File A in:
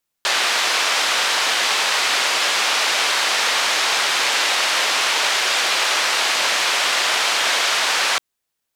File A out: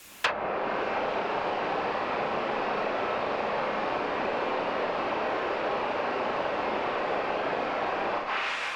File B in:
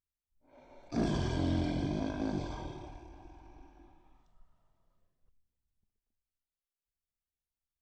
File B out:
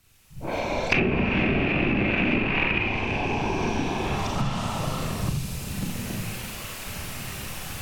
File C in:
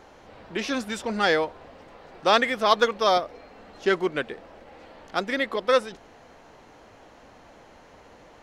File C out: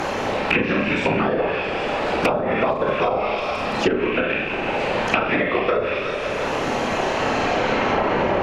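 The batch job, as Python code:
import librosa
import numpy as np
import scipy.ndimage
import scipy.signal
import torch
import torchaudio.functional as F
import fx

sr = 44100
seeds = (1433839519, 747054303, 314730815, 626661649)

y = fx.rattle_buzz(x, sr, strikes_db=-42.0, level_db=-19.0)
y = fx.recorder_agc(y, sr, target_db=-11.0, rise_db_per_s=13.0, max_gain_db=30)
y = (np.mod(10.0 ** (5.5 / 20.0) * y + 1.0, 2.0) - 1.0) / 10.0 ** (5.5 / 20.0)
y = fx.echo_feedback(y, sr, ms=166, feedback_pct=57, wet_db=-13.0)
y = fx.whisperise(y, sr, seeds[0])
y = fx.peak_eq(y, sr, hz=2600.0, db=6.0, octaves=0.33)
y = fx.rev_schroeder(y, sr, rt60_s=0.52, comb_ms=29, drr_db=-0.5)
y = fx.dynamic_eq(y, sr, hz=4700.0, q=2.9, threshold_db=-29.0, ratio=4.0, max_db=4)
y = fx.env_lowpass_down(y, sr, base_hz=570.0, full_db=-11.5)
y = fx.band_squash(y, sr, depth_pct=100)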